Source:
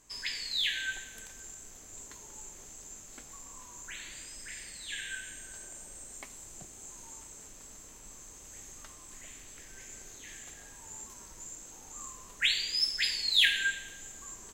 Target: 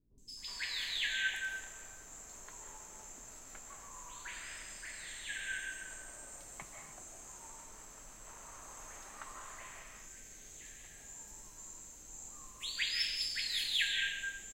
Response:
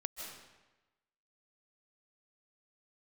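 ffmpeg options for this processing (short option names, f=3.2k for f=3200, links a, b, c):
-filter_complex "[0:a]asetnsamples=n=441:p=0,asendcmd='7.9 equalizer g 13.5;9.45 equalizer g -3.5',equalizer=f=1.1k:t=o:w=2.1:g=6.5,acrossover=split=330|3800[a][b][c];[c]adelay=180[d];[b]adelay=370[e];[a][e][d]amix=inputs=3:normalize=0[f];[1:a]atrim=start_sample=2205,afade=t=out:st=0.39:d=0.01,atrim=end_sample=17640[g];[f][g]afir=irnorm=-1:irlink=0,volume=-2.5dB"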